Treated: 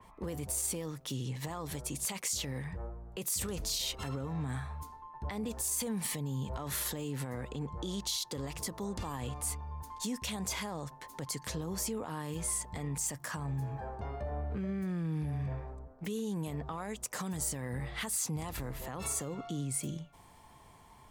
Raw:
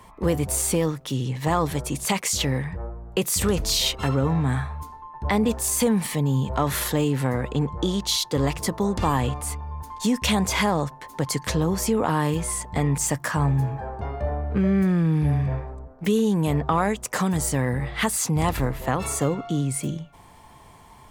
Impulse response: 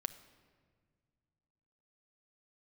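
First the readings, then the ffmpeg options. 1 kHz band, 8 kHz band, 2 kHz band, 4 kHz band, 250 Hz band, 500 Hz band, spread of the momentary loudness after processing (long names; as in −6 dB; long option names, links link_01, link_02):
−16.0 dB, −8.0 dB, −14.0 dB, −11.5 dB, −15.0 dB, −15.5 dB, 8 LU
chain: -af "alimiter=limit=-20.5dB:level=0:latency=1:release=110,adynamicequalizer=threshold=0.00447:dfrequency=3700:dqfactor=0.7:tfrequency=3700:tqfactor=0.7:attack=5:release=100:ratio=0.375:range=3:mode=boostabove:tftype=highshelf,volume=-8.5dB"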